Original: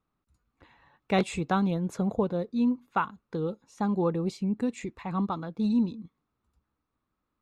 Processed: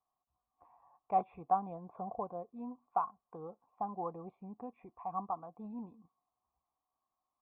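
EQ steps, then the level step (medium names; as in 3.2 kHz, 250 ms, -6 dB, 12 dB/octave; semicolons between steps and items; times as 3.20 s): dynamic bell 910 Hz, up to -4 dB, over -42 dBFS, Q 1.1; cascade formant filter a; +7.5 dB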